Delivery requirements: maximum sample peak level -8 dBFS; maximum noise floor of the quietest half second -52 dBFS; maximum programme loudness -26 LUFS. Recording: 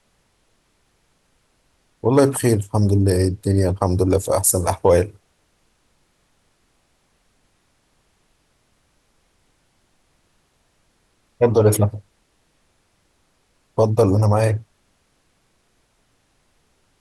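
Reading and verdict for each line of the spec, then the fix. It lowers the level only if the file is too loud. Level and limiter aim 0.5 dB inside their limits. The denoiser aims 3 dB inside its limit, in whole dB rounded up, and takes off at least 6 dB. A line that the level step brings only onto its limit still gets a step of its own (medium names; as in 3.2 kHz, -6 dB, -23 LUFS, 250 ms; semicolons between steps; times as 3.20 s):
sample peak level -4.0 dBFS: fail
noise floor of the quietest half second -64 dBFS: pass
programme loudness -18.5 LUFS: fail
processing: trim -8 dB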